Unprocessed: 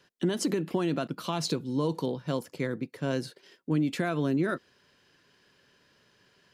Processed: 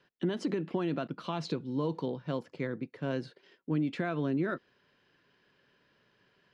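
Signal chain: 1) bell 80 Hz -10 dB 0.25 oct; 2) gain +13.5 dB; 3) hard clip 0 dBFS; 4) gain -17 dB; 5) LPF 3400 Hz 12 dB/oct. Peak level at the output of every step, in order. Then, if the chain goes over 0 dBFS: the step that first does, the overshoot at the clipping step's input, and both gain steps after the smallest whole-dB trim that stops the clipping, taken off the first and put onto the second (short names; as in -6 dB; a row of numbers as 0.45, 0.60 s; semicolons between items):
-15.5, -2.0, -2.0, -19.0, -19.0 dBFS; no overload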